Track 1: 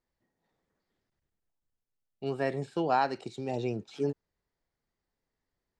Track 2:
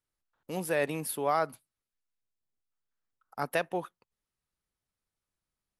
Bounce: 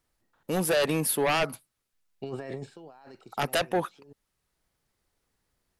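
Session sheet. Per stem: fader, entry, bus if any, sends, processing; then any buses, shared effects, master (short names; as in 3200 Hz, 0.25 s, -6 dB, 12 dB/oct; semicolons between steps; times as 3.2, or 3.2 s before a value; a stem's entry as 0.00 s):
0.0 dB, 0.00 s, no send, negative-ratio compressor -36 dBFS, ratio -1; auto duck -16 dB, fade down 0.75 s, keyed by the second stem
-6.5 dB, 0.00 s, no send, sine folder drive 12 dB, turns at -13 dBFS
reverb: off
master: dry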